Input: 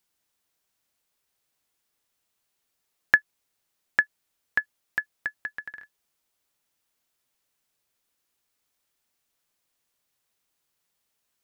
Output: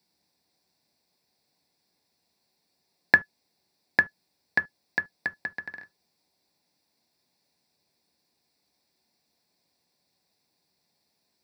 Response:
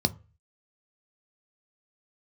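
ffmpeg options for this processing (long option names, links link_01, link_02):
-filter_complex "[0:a]equalizer=frequency=97:width=1.3:gain=-10.5[link_01];[1:a]atrim=start_sample=2205,atrim=end_sample=3528[link_02];[link_01][link_02]afir=irnorm=-1:irlink=0,volume=-4.5dB"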